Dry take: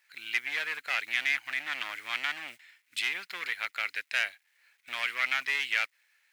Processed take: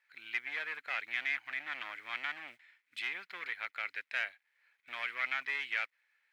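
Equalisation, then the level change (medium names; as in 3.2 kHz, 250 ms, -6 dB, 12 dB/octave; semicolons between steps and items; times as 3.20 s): tone controls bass -2 dB, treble -14 dB; band-stop 2.8 kHz, Q 21; -4.5 dB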